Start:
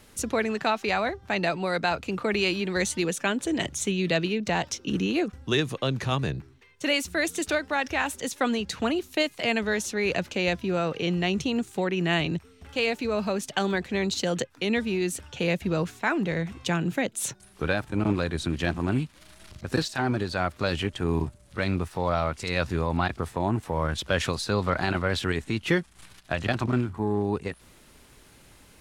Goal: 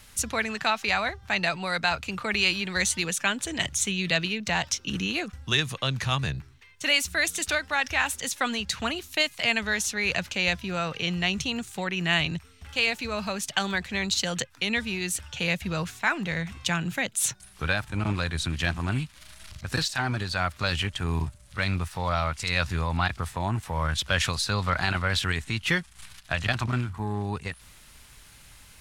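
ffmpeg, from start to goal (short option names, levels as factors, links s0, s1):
-af "equalizer=f=360:w=0.62:g=-14.5,volume=1.78"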